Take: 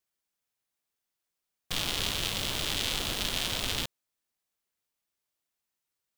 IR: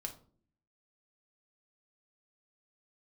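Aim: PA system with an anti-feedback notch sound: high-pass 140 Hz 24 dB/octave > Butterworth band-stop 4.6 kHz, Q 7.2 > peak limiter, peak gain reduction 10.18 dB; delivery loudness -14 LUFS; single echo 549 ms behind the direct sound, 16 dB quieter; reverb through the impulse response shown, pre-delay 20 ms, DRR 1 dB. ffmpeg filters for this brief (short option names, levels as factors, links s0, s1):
-filter_complex "[0:a]aecho=1:1:549:0.158,asplit=2[s0][s1];[1:a]atrim=start_sample=2205,adelay=20[s2];[s1][s2]afir=irnorm=-1:irlink=0,volume=1.12[s3];[s0][s3]amix=inputs=2:normalize=0,highpass=f=140:w=0.5412,highpass=f=140:w=1.3066,asuperstop=centerf=4600:order=8:qfactor=7.2,volume=10.6,alimiter=limit=0.708:level=0:latency=1"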